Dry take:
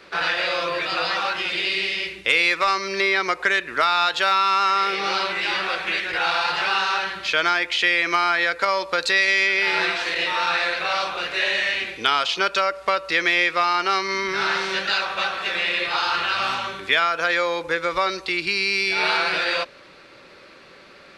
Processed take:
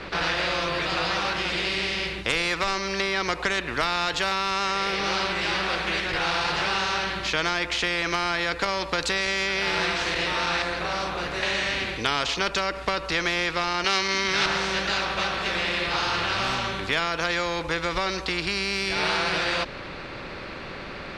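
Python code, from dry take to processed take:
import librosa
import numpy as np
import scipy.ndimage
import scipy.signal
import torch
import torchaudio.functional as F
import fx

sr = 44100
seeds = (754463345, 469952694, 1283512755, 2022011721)

y = fx.peak_eq(x, sr, hz=3100.0, db=-11.0, octaves=1.6, at=(10.62, 11.43))
y = fx.weighting(y, sr, curve='D', at=(13.84, 14.46))
y = fx.riaa(y, sr, side='playback')
y = fx.spectral_comp(y, sr, ratio=2.0)
y = y * librosa.db_to_amplitude(-2.5)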